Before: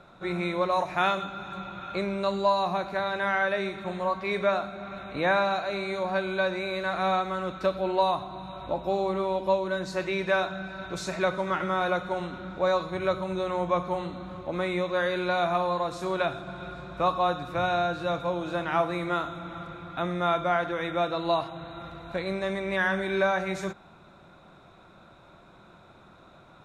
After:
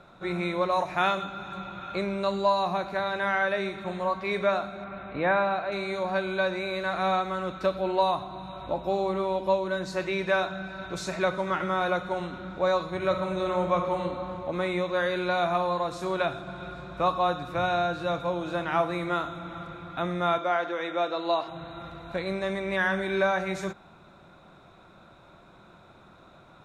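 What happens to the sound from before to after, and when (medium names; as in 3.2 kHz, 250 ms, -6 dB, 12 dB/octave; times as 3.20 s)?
4.84–5.72 s: low-pass 2.6 kHz
12.95–14.01 s: reverb throw, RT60 2.6 s, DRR 4 dB
20.38–21.48 s: Chebyshev band-pass 340–6700 Hz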